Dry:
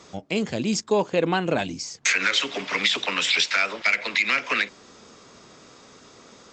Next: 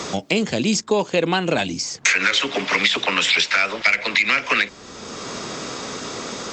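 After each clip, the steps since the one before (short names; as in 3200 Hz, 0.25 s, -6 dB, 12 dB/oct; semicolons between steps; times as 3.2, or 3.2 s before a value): three-band squash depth 70%; gain +4 dB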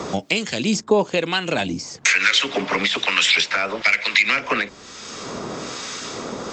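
harmonic tremolo 1.1 Hz, depth 70%, crossover 1300 Hz; gain +3 dB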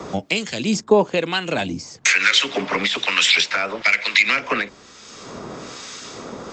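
three-band expander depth 40%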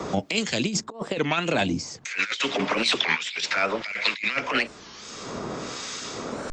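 negative-ratio compressor -22 dBFS, ratio -0.5; record warp 33 1/3 rpm, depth 250 cents; gain -2.5 dB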